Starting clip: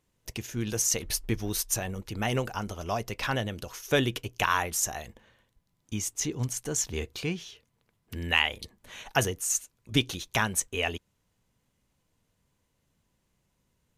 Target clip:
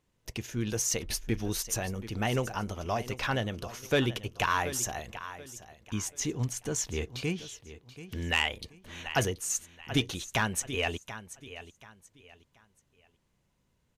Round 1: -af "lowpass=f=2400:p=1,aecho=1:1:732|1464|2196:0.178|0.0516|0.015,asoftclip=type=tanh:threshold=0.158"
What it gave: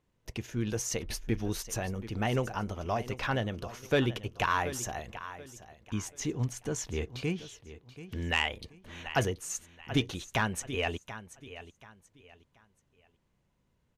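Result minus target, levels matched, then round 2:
8 kHz band -4.5 dB
-af "lowpass=f=6100:p=1,aecho=1:1:732|1464|2196:0.178|0.0516|0.015,asoftclip=type=tanh:threshold=0.158"

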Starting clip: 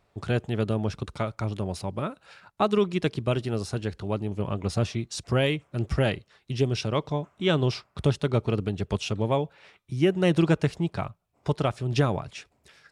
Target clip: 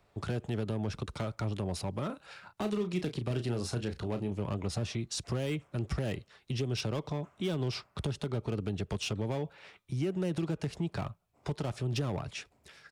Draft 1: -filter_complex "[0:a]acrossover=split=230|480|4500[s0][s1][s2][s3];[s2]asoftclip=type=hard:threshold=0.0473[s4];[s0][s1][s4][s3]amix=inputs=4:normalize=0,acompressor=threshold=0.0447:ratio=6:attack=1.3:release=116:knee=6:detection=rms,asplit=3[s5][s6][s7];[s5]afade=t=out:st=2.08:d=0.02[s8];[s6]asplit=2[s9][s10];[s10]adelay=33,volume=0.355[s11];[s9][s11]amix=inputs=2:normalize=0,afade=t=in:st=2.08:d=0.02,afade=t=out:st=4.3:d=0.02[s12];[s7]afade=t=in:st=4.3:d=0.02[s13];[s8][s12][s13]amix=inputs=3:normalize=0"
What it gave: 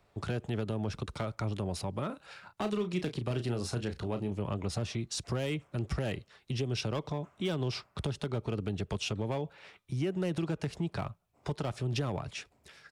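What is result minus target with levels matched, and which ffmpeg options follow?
hard clipper: distortion -5 dB
-filter_complex "[0:a]acrossover=split=230|480|4500[s0][s1][s2][s3];[s2]asoftclip=type=hard:threshold=0.0237[s4];[s0][s1][s4][s3]amix=inputs=4:normalize=0,acompressor=threshold=0.0447:ratio=6:attack=1.3:release=116:knee=6:detection=rms,asplit=3[s5][s6][s7];[s5]afade=t=out:st=2.08:d=0.02[s8];[s6]asplit=2[s9][s10];[s10]adelay=33,volume=0.355[s11];[s9][s11]amix=inputs=2:normalize=0,afade=t=in:st=2.08:d=0.02,afade=t=out:st=4.3:d=0.02[s12];[s7]afade=t=in:st=4.3:d=0.02[s13];[s8][s12][s13]amix=inputs=3:normalize=0"

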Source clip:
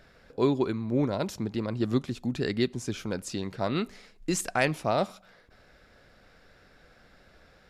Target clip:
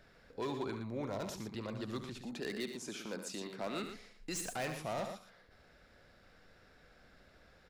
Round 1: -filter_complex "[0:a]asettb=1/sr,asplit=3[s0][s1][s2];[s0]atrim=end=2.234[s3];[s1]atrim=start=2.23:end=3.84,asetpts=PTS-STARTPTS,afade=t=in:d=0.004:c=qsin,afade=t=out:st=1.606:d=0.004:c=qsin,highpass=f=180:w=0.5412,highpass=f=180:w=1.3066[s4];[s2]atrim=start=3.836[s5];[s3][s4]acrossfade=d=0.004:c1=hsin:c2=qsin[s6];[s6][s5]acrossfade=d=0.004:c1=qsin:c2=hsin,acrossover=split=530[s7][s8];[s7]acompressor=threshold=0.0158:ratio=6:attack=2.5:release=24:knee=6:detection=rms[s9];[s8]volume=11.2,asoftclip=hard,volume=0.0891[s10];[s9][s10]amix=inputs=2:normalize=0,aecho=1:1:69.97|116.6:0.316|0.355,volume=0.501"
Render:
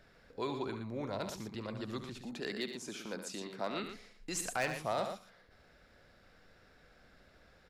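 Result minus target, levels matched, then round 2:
overload inside the chain: distortion -9 dB
-filter_complex "[0:a]asettb=1/sr,asplit=3[s0][s1][s2];[s0]atrim=end=2.234[s3];[s1]atrim=start=2.23:end=3.84,asetpts=PTS-STARTPTS,afade=t=in:d=0.004:c=qsin,afade=t=out:st=1.606:d=0.004:c=qsin,highpass=f=180:w=0.5412,highpass=f=180:w=1.3066[s4];[s2]atrim=start=3.836[s5];[s3][s4]acrossfade=d=0.004:c1=hsin:c2=qsin[s6];[s6][s5]acrossfade=d=0.004:c1=qsin:c2=hsin,acrossover=split=530[s7][s8];[s7]acompressor=threshold=0.0158:ratio=6:attack=2.5:release=24:knee=6:detection=rms[s9];[s8]volume=33.5,asoftclip=hard,volume=0.0299[s10];[s9][s10]amix=inputs=2:normalize=0,aecho=1:1:69.97|116.6:0.316|0.355,volume=0.501"

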